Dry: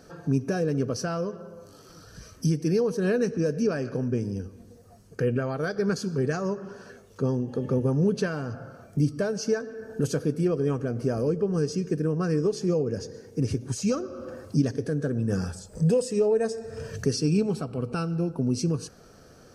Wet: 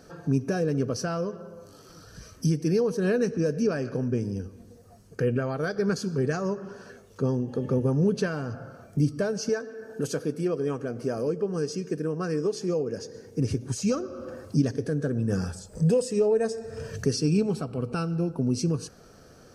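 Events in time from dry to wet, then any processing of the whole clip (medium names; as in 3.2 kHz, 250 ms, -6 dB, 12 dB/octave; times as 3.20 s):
9.49–13.15 s: high-pass 270 Hz 6 dB/octave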